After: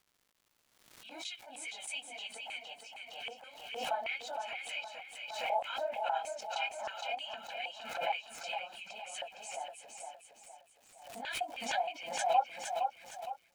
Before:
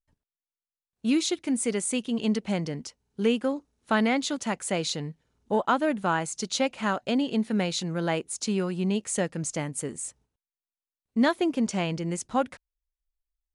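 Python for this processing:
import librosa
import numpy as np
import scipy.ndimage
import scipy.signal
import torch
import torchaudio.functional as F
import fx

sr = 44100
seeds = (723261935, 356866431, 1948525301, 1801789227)

y = fx.phase_scramble(x, sr, seeds[0], window_ms=50)
y = scipy.signal.sosfilt(scipy.signal.butter(2, 500.0, 'highpass', fs=sr, output='sos'), y)
y = fx.high_shelf(y, sr, hz=4600.0, db=9.5)
y = y + 0.99 * np.pad(y, (int(1.3 * sr / 1000.0), 0))[:len(y)]
y = fx.filter_lfo_bandpass(y, sr, shape='square', hz=3.2, low_hz=750.0, high_hz=2600.0, q=6.2)
y = fx.dmg_crackle(y, sr, seeds[1], per_s=300.0, level_db=-55.0)
y = fx.echo_feedback(y, sr, ms=463, feedback_pct=39, wet_db=-5.5)
y = fx.pre_swell(y, sr, db_per_s=60.0)
y = y * 10.0 ** (-4.0 / 20.0)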